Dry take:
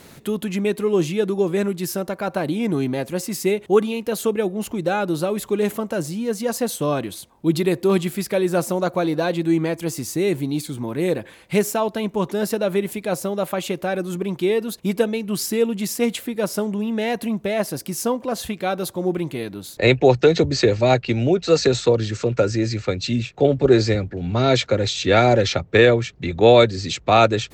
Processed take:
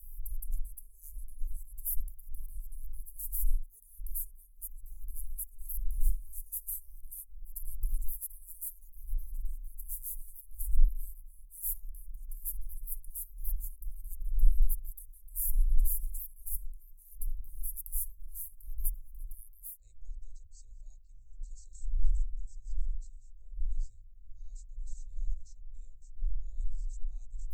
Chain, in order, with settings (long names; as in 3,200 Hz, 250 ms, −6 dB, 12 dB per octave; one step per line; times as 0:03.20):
wind on the microphone 150 Hz −25 dBFS
inverse Chebyshev band-stop filter 140–3,500 Hz, stop band 70 dB
level +1.5 dB